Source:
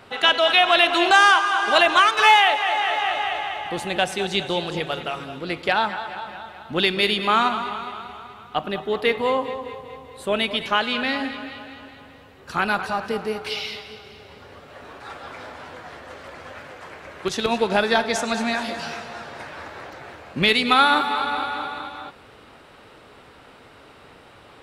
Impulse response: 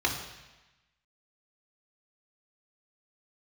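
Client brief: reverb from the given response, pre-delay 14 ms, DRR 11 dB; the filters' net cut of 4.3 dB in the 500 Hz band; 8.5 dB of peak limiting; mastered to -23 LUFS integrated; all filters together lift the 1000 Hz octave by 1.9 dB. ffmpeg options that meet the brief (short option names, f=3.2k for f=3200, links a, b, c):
-filter_complex "[0:a]equalizer=f=500:t=o:g=-8,equalizer=f=1k:t=o:g=5,alimiter=limit=-10dB:level=0:latency=1,asplit=2[a][b];[1:a]atrim=start_sample=2205,adelay=14[c];[b][c]afir=irnorm=-1:irlink=0,volume=-22dB[d];[a][d]amix=inputs=2:normalize=0,volume=-0.5dB"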